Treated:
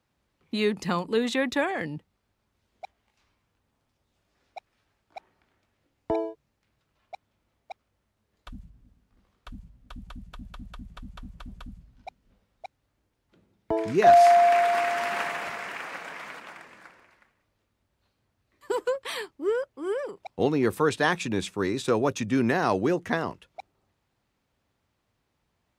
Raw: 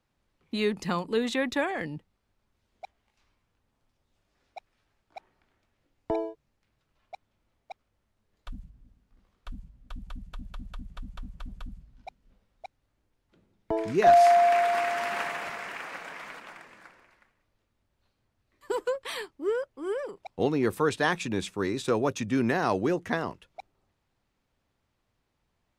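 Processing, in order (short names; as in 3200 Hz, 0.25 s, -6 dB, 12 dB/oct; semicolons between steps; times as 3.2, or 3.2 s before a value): HPF 47 Hz; gain +2 dB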